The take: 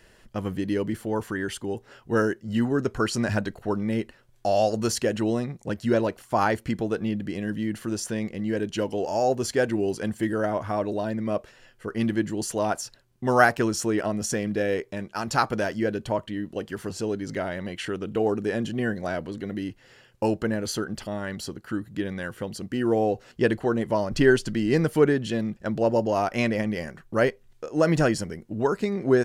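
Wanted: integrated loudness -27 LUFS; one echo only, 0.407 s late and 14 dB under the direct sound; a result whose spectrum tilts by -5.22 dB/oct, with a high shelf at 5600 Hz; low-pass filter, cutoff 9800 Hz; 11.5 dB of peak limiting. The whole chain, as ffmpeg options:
-af "lowpass=9.8k,highshelf=f=5.6k:g=4,alimiter=limit=-14.5dB:level=0:latency=1,aecho=1:1:407:0.2,volume=0.5dB"

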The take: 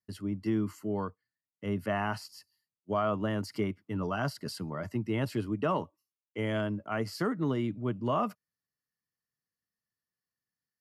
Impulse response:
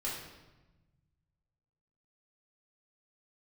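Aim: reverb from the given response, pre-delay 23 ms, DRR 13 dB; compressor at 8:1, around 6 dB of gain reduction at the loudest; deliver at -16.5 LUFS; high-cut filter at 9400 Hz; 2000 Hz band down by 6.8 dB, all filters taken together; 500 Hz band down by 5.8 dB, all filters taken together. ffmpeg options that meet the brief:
-filter_complex "[0:a]lowpass=9.4k,equalizer=f=500:t=o:g=-7.5,equalizer=f=2k:t=o:g=-9,acompressor=threshold=-34dB:ratio=8,asplit=2[a][b];[1:a]atrim=start_sample=2205,adelay=23[c];[b][c]afir=irnorm=-1:irlink=0,volume=-16dB[d];[a][d]amix=inputs=2:normalize=0,volume=23.5dB"

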